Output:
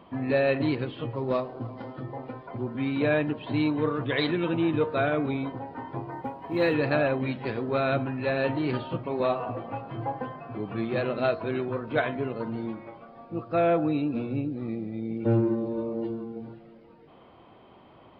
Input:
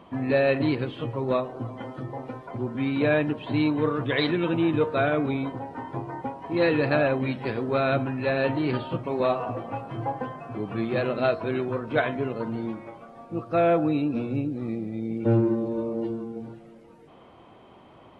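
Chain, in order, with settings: 1.15–1.93 s: median filter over 15 samples; resampled via 11.025 kHz; 6.11–6.74 s: short-mantissa float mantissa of 6-bit; trim -2 dB

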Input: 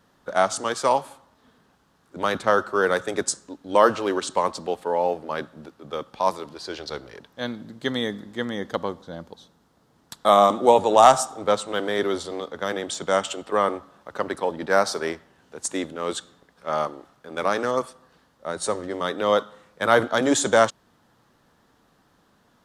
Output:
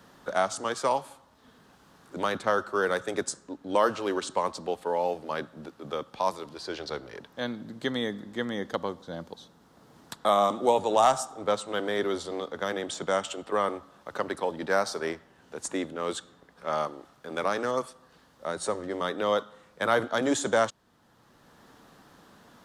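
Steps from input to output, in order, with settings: three bands compressed up and down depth 40%; trim -5 dB

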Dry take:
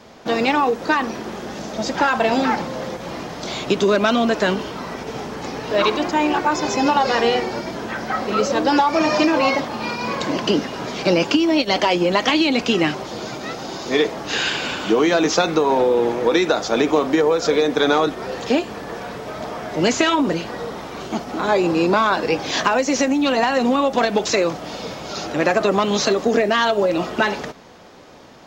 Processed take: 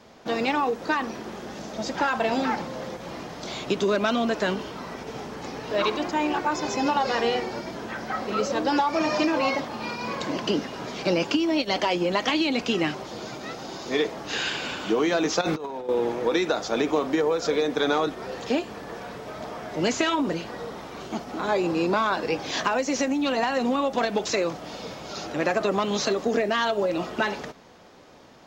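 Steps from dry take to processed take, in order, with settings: 15.41–15.89 s: compressor with a negative ratio -22 dBFS, ratio -0.5; trim -6.5 dB

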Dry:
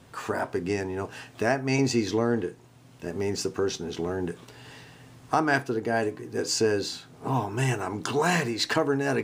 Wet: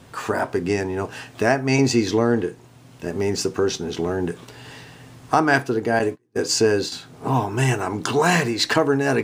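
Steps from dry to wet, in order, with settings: 5.99–6.92 s: gate -31 dBFS, range -34 dB; trim +6 dB

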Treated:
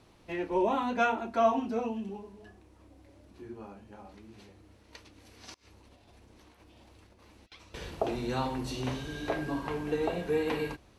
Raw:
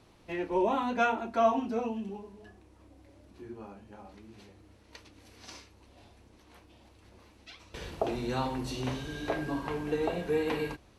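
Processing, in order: 5.54–7.52 s: compressor with a negative ratio -58 dBFS, ratio -0.5

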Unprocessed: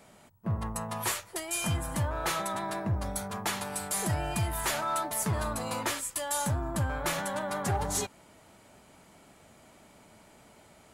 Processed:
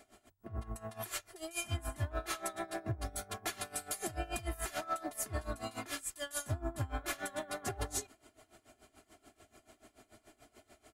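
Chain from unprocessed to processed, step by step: band-stop 980 Hz, Q 7.8; comb 2.9 ms, depth 89%; peak limiter -22.5 dBFS, peak gain reduction 6.5 dB; logarithmic tremolo 6.9 Hz, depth 19 dB; trim -2.5 dB

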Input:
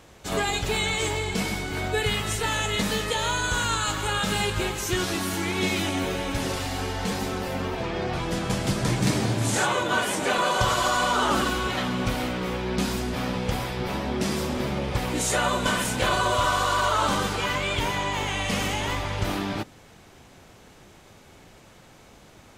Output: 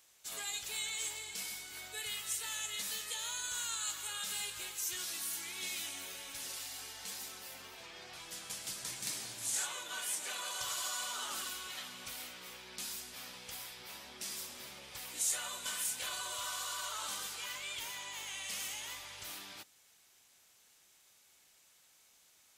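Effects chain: pre-emphasis filter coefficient 0.97; trim -5 dB

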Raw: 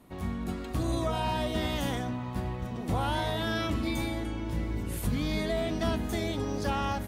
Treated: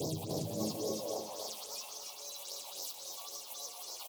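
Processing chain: one-bit delta coder 64 kbps, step -31 dBFS; wind noise 640 Hz -32 dBFS; Chebyshev band-stop 270–3300 Hz, order 2; tone controls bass -14 dB, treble -7 dB; compressor with a negative ratio -44 dBFS, ratio -1; phase shifter stages 6, 2.1 Hz, lowest notch 200–1700 Hz; multi-tap echo 209/525/848/860 ms -16.5/-9.5/-9/-20 dB; high-pass sweep 75 Hz -> 790 Hz, 0.79–2.51 s; speed mistake 45 rpm record played at 78 rpm; bit-crushed delay 291 ms, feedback 35%, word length 10-bit, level -6 dB; trim +5 dB

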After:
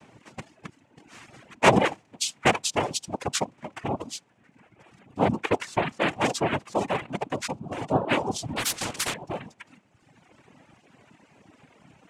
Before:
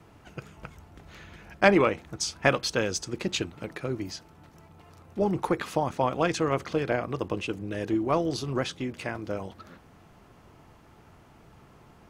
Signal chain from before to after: noise-vocoded speech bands 4; reverb removal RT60 1.4 s; 8.56–9.14 s: spectrum-flattening compressor 4:1; trim +2.5 dB

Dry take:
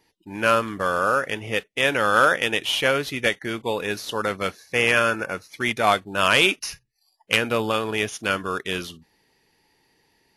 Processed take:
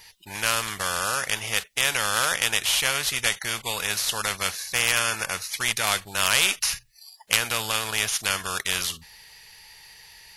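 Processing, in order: amplifier tone stack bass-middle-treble 10-0-10; spectrum-flattening compressor 2:1; trim +4.5 dB

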